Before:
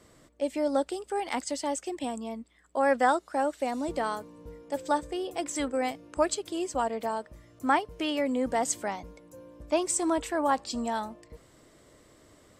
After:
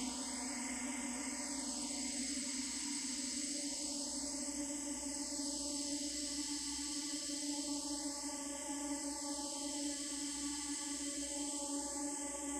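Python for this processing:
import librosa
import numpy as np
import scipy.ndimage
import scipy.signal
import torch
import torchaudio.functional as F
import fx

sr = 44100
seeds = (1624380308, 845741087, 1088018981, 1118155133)

y = fx.paulstretch(x, sr, seeds[0], factor=39.0, window_s=0.5, from_s=1.41)
y = fx.filter_lfo_notch(y, sr, shape='sine', hz=0.26, low_hz=600.0, high_hz=4300.0, q=1.2)
y = fx.tone_stack(y, sr, knobs='6-0-2')
y = F.gain(torch.from_numpy(y), 12.0).numpy()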